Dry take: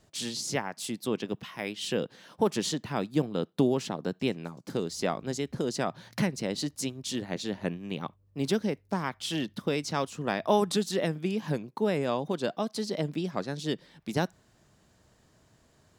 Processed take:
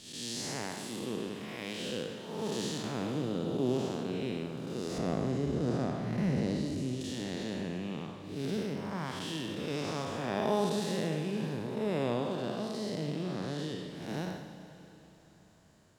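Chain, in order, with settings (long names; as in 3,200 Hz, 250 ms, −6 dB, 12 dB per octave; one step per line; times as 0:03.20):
spectrum smeared in time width 272 ms
0:04.98–0:07.01: spectral tilt −2.5 dB per octave
four-comb reverb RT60 3.5 s, combs from 33 ms, DRR 8 dB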